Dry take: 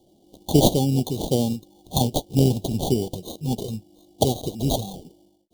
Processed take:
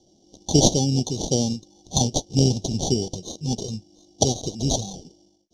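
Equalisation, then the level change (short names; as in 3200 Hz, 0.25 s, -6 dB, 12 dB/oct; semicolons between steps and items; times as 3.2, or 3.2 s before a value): synth low-pass 5800 Hz, resonance Q 8.4; low shelf 360 Hz +3 dB; -3.0 dB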